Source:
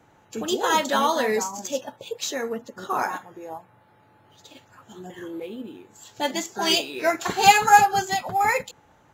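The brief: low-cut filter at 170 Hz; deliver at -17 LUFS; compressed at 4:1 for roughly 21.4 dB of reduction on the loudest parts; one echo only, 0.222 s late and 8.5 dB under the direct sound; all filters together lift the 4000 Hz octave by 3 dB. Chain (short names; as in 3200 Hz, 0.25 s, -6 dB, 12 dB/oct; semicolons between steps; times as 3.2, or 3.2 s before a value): HPF 170 Hz; bell 4000 Hz +4 dB; compressor 4:1, threshold -35 dBFS; echo 0.222 s -8.5 dB; gain +19.5 dB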